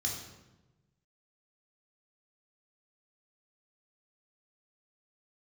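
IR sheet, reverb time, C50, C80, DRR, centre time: 1.1 s, 4.0 dB, 6.5 dB, -1.5 dB, 42 ms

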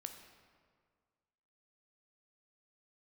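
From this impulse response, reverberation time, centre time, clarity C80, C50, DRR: 1.9 s, 28 ms, 8.5 dB, 7.5 dB, 5.5 dB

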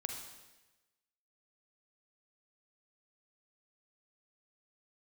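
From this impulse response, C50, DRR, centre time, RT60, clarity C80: 4.5 dB, 3.0 dB, 38 ms, 1.1 s, 6.5 dB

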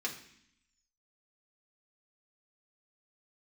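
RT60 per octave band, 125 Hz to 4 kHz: 0.90 s, 1.0 s, 0.60 s, 0.65 s, 0.85 s, 0.85 s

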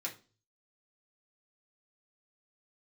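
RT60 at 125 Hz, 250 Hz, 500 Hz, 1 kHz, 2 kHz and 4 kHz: 0.75 s, 0.45 s, 0.40 s, 0.30 s, 0.30 s, 0.35 s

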